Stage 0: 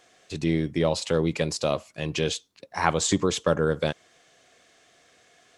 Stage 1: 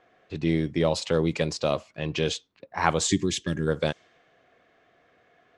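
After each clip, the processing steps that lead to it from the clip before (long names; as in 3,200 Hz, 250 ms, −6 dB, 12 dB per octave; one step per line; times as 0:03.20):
low-pass that shuts in the quiet parts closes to 1,800 Hz, open at −18.5 dBFS
gain on a spectral selection 0:03.08–0:03.67, 400–1,600 Hz −17 dB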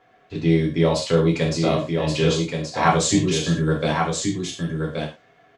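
single-tap delay 1,126 ms −5 dB
reverb whose tail is shaped and stops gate 140 ms falling, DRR −2.5 dB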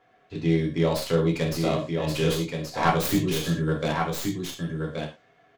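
stylus tracing distortion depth 0.21 ms
level −4.5 dB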